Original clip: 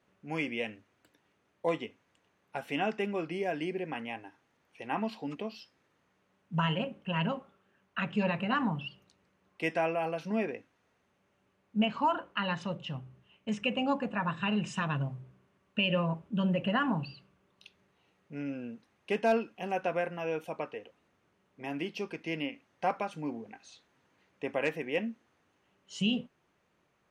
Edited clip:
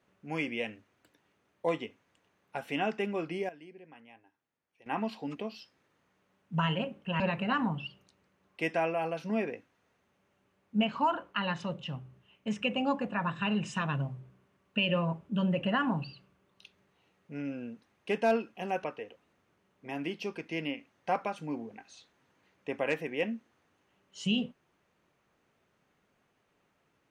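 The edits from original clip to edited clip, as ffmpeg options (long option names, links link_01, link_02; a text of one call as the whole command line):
ffmpeg -i in.wav -filter_complex "[0:a]asplit=5[link_01][link_02][link_03][link_04][link_05];[link_01]atrim=end=3.49,asetpts=PTS-STARTPTS,afade=type=out:start_time=3.31:duration=0.18:curve=log:silence=0.149624[link_06];[link_02]atrim=start=3.49:end=4.86,asetpts=PTS-STARTPTS,volume=-16.5dB[link_07];[link_03]atrim=start=4.86:end=7.202,asetpts=PTS-STARTPTS,afade=type=in:duration=0.18:curve=log:silence=0.149624[link_08];[link_04]atrim=start=8.208:end=19.852[link_09];[link_05]atrim=start=20.588[link_10];[link_06][link_07][link_08]concat=n=3:v=0:a=1[link_11];[link_11][link_09]acrossfade=duration=0.004:curve1=hsin:curve2=hsin[link_12];[link_12][link_10]acrossfade=duration=0.004:curve1=hsin:curve2=hsin" out.wav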